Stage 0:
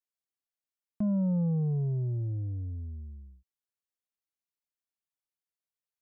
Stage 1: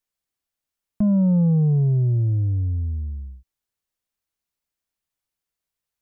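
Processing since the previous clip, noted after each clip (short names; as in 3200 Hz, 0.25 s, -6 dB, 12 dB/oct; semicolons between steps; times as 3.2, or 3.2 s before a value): low shelf 97 Hz +10.5 dB; gain +7.5 dB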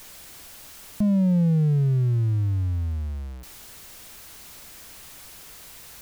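zero-crossing step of -33 dBFS; gain -3 dB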